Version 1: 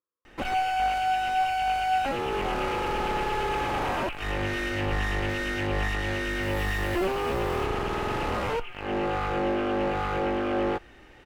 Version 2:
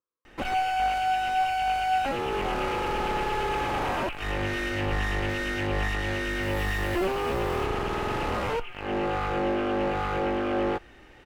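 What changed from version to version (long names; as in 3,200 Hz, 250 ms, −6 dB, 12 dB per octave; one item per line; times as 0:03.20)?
nothing changed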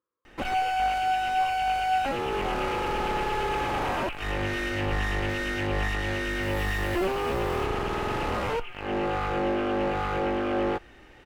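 speech +7.5 dB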